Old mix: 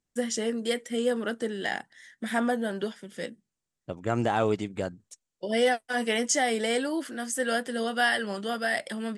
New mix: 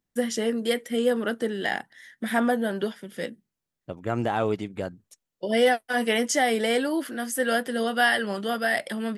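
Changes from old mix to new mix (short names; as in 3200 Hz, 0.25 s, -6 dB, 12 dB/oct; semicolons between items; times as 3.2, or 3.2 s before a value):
first voice +3.5 dB; master: remove synth low-pass 7900 Hz, resonance Q 2.1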